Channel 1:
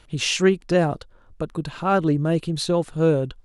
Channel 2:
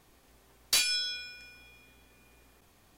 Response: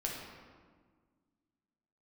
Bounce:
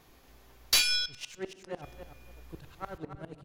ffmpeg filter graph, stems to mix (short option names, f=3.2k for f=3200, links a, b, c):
-filter_complex "[0:a]aeval=exprs='if(lt(val(0),0),0.447*val(0),val(0))':c=same,highpass=f=200:p=1,aeval=exprs='val(0)*pow(10,-31*if(lt(mod(-10*n/s,1),2*abs(-10)/1000),1-mod(-10*n/s,1)/(2*abs(-10)/1000),(mod(-10*n/s,1)-2*abs(-10)/1000)/(1-2*abs(-10)/1000))/20)':c=same,adelay=950,volume=-10.5dB,asplit=3[a][b][c];[b]volume=-14dB[d];[c]volume=-8dB[e];[1:a]equalizer=f=8.6k:t=o:w=0.22:g=-14.5,volume=2dB,asplit=3[f][g][h];[f]atrim=end=1.06,asetpts=PTS-STARTPTS,afade=t=out:st=1.056:d=0.004:c=hsin[i];[g]atrim=start=1.06:end=1.82,asetpts=PTS-STARTPTS,volume=0[j];[h]atrim=start=1.82,asetpts=PTS-STARTPTS,afade=t=in:d=0.004:c=hsin[k];[i][j][k]concat=n=3:v=0:a=1,asplit=2[l][m];[m]volume=-17.5dB[n];[2:a]atrim=start_sample=2205[o];[d][n]amix=inputs=2:normalize=0[p];[p][o]afir=irnorm=-1:irlink=0[q];[e]aecho=0:1:282|564|846|1128:1|0.22|0.0484|0.0106[r];[a][l][q][r]amix=inputs=4:normalize=0,asubboost=boost=5.5:cutoff=100"